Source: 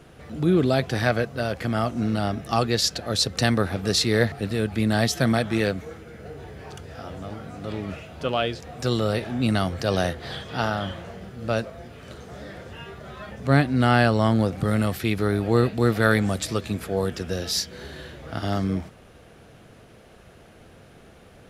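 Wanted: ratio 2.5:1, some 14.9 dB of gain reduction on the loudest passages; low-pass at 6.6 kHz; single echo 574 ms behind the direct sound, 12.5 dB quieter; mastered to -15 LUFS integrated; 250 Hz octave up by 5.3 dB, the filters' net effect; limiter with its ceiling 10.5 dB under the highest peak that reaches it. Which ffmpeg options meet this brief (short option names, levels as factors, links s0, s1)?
-af "lowpass=6600,equalizer=f=250:t=o:g=6.5,acompressor=threshold=0.0178:ratio=2.5,alimiter=level_in=1.33:limit=0.0631:level=0:latency=1,volume=0.75,aecho=1:1:574:0.237,volume=12.6"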